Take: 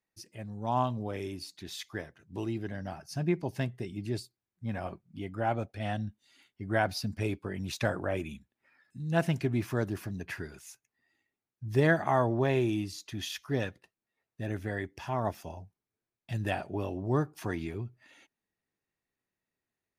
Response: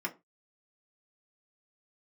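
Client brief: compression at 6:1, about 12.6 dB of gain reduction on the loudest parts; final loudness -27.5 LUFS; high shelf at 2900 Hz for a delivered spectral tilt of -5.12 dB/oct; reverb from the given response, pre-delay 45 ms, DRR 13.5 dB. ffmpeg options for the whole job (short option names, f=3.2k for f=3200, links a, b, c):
-filter_complex "[0:a]highshelf=f=2.9k:g=4.5,acompressor=threshold=-33dB:ratio=6,asplit=2[a][b];[1:a]atrim=start_sample=2205,adelay=45[c];[b][c]afir=irnorm=-1:irlink=0,volume=-17.5dB[d];[a][d]amix=inputs=2:normalize=0,volume=11.5dB"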